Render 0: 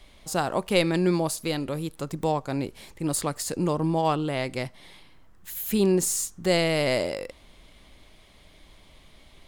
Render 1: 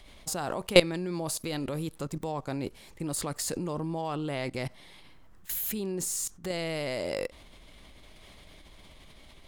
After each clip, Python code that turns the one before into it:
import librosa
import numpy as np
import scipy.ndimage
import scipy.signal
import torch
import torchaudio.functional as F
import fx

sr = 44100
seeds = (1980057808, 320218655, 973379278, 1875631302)

y = fx.level_steps(x, sr, step_db=19)
y = y * 10.0 ** (5.5 / 20.0)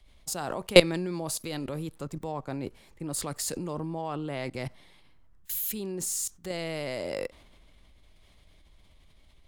y = fx.band_widen(x, sr, depth_pct=40)
y = y * 10.0 ** (-1.0 / 20.0)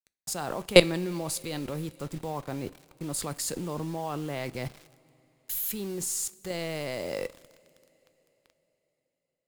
y = fx.quant_dither(x, sr, seeds[0], bits=8, dither='none')
y = fx.rev_double_slope(y, sr, seeds[1], early_s=0.31, late_s=4.3, knee_db=-19, drr_db=16.0)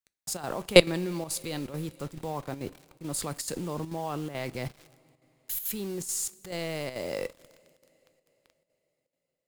y = fx.chopper(x, sr, hz=2.3, depth_pct=60, duty_pct=85)